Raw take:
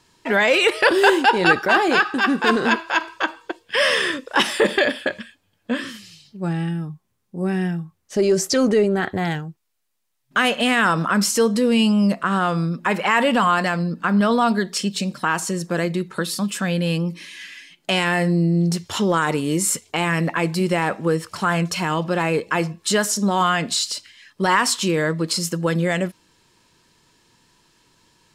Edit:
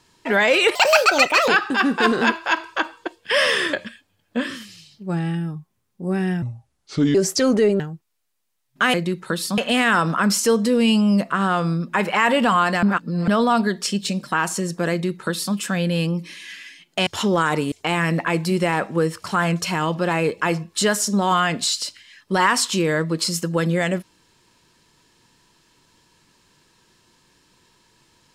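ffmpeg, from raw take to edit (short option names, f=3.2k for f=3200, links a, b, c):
-filter_complex "[0:a]asplit=13[a][b][c][d][e][f][g][h][i][j][k][l][m];[a]atrim=end=0.754[n];[b]atrim=start=0.75:end=1.92,asetpts=PTS-STARTPTS,asetrate=70560,aresample=44100,atrim=end_sample=32248,asetpts=PTS-STARTPTS[o];[c]atrim=start=1.916:end=4.172[p];[d]atrim=start=5.068:end=7.764[q];[e]atrim=start=7.76:end=8.29,asetpts=PTS-STARTPTS,asetrate=32193,aresample=44100[r];[f]atrim=start=8.286:end=8.942[s];[g]atrim=start=9.348:end=10.492[t];[h]atrim=start=15.818:end=16.462[u];[i]atrim=start=10.488:end=13.742[v];[j]atrim=start=13.738:end=14.192,asetpts=PTS-STARTPTS,areverse[w];[k]atrim=start=14.188:end=17.982[x];[l]atrim=start=18.828:end=19.482[y];[m]atrim=start=19.808[z];[n][o]acrossfade=d=0.004:c1=hsin:c2=hsin[aa];[aa][p]acrossfade=d=0.004:c1=hsin:c2=hsin[ab];[ab][q]acrossfade=d=0.004:c1=hsin:c2=hsin[ac];[ac][r]acrossfade=d=0.004:c1=hsin:c2=hsin[ad];[ad][s]acrossfade=d=0.004:c1=hsin:c2=hsin[ae];[ae][t]acrossfade=d=0.004:c1=hsin:c2=hsin[af];[af][u]acrossfade=d=0.004:c1=hsin:c2=hsin[ag];[ag][v]acrossfade=d=0.004:c1=hsin:c2=hsin[ah];[ah][w]acrossfade=d=0.004:c1=hsin:c2=hsin[ai];[ai][x]acrossfade=d=0.004:c1=hsin:c2=hsin[aj];[aj][y]acrossfade=d=0.004:c1=hsin:c2=hsin[ak];[ak][z]acrossfade=d=0.004:c1=hsin:c2=hsin"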